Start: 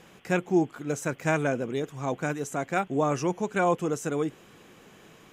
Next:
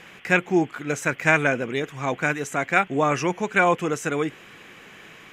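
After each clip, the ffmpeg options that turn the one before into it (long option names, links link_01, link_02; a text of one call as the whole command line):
ffmpeg -i in.wav -af "equalizer=frequency=2100:width_type=o:width=1.5:gain=12,volume=2dB" out.wav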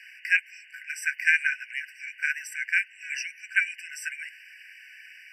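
ffmpeg -i in.wav -af "afftfilt=real='re*eq(mod(floor(b*sr/1024/1500),2),1)':imag='im*eq(mod(floor(b*sr/1024/1500),2),1)':win_size=1024:overlap=0.75" out.wav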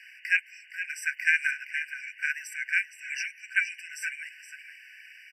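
ffmpeg -i in.wav -af "aecho=1:1:467:0.282,volume=-2dB" out.wav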